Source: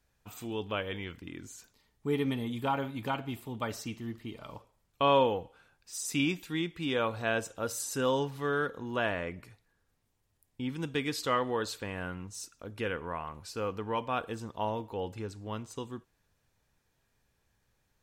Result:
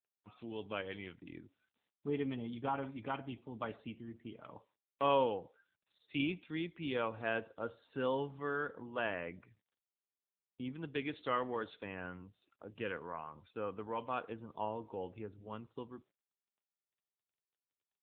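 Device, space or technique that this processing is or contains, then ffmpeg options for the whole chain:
mobile call with aggressive noise cancelling: -af "highpass=frequency=140:poles=1,afftdn=noise_reduction=22:noise_floor=-54,volume=-5dB" -ar 8000 -c:a libopencore_amrnb -b:a 7950

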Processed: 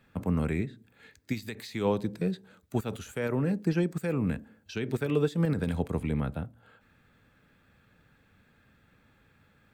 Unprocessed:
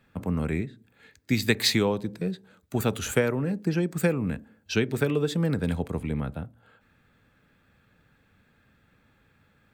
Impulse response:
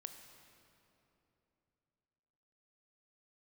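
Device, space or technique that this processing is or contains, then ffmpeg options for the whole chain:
de-esser from a sidechain: -filter_complex "[0:a]asplit=2[link_01][link_02];[link_02]highpass=6200,apad=whole_len=429416[link_03];[link_01][link_03]sidechaincompress=threshold=-49dB:ratio=5:attack=1.3:release=77"

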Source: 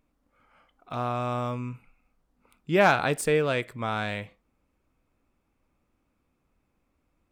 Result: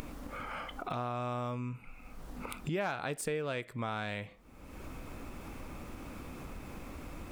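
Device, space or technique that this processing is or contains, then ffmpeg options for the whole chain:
upward and downward compression: -af "acompressor=mode=upward:threshold=-31dB:ratio=2.5,acompressor=threshold=-42dB:ratio=4,volume=6dB"

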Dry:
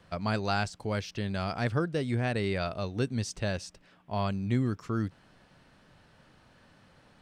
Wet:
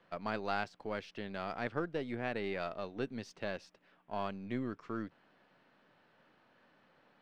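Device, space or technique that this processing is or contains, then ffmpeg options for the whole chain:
crystal radio: -af "highpass=250,lowpass=3100,aeval=exprs='if(lt(val(0),0),0.708*val(0),val(0))':channel_layout=same,volume=-4dB"

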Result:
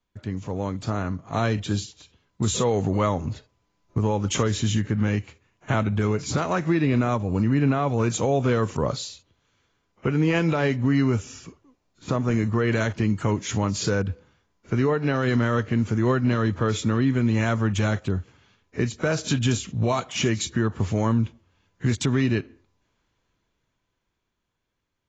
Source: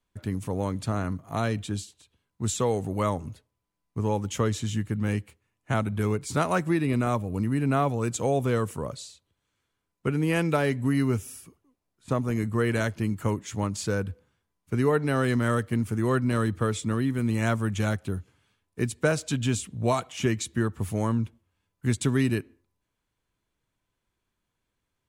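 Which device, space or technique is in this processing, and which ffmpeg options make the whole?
low-bitrate web radio: -af "dynaudnorm=framelen=130:gausssize=31:maxgain=15dB,alimiter=limit=-13dB:level=0:latency=1:release=264" -ar 16000 -c:a aac -b:a 24k

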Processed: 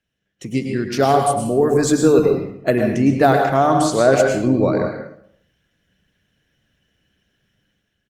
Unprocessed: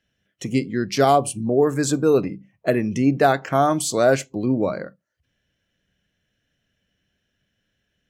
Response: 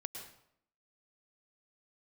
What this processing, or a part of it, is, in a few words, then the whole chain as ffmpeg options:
speakerphone in a meeting room: -filter_complex "[0:a]asettb=1/sr,asplit=3[link_01][link_02][link_03];[link_01]atrim=end=3.544[link_04];[link_02]atrim=start=3.54:end=4.14,asetpts=PTS-STARTPTS,afade=type=in:duration=0.004:curve=qsin,afade=type=out:start_time=0.596:duration=0.004:curve=qsin,lowpass=7500[link_05];[link_03]atrim=start=4.136[link_06];[link_04][link_05]acrossfade=duration=0.004:curve1=hsin:curve2=qsin[link_07];[link_07][link_06]acrossfade=duration=0.004:curve1=qsin:curve2=hsin[link_08];[1:a]atrim=start_sample=2205[link_09];[link_08][link_09]afir=irnorm=-1:irlink=0,asplit=2[link_10][link_11];[link_11]adelay=120,highpass=300,lowpass=3400,asoftclip=type=hard:threshold=-14dB,volume=-26dB[link_12];[link_10][link_12]amix=inputs=2:normalize=0,dynaudnorm=framelen=120:gausssize=9:maxgain=10dB" -ar 48000 -c:a libopus -b:a 24k

